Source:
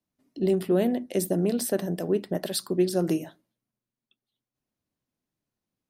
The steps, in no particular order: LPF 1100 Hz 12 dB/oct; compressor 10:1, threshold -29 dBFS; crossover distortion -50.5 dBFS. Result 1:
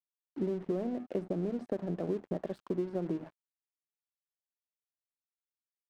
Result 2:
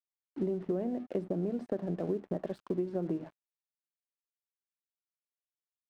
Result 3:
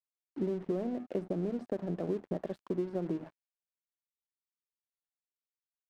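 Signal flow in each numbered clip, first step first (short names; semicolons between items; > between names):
LPF > compressor > crossover distortion; LPF > crossover distortion > compressor; compressor > LPF > crossover distortion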